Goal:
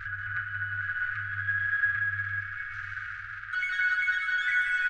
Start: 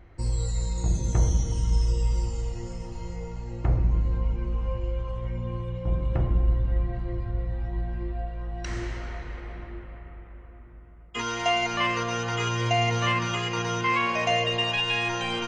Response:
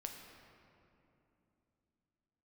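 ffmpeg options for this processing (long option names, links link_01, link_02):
-filter_complex "[0:a]aeval=exprs='val(0)+0.5*0.0473*sgn(val(0))':channel_layout=same,asetrate=139356,aresample=44100,afftfilt=real='re*(1-between(b*sr/4096,120,1200))':imag='im*(1-between(b*sr/4096,120,1200))':win_size=4096:overlap=0.75,acrossover=split=940[link_01][link_02];[link_01]alimiter=level_in=9.5dB:limit=-24dB:level=0:latency=1:release=21,volume=-9.5dB[link_03];[link_03][link_02]amix=inputs=2:normalize=0,lowpass=frequency=1600:width_type=q:width=7.8,aecho=1:1:181|362|543|724|905|1086:0.447|0.219|0.107|0.0526|0.0258|0.0126,asoftclip=type=hard:threshold=-9dB,volume=-7.5dB"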